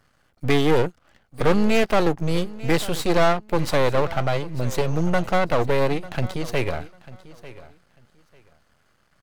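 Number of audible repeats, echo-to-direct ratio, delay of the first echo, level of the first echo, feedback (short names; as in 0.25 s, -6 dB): 2, -18.0 dB, 0.895 s, -18.0 dB, 20%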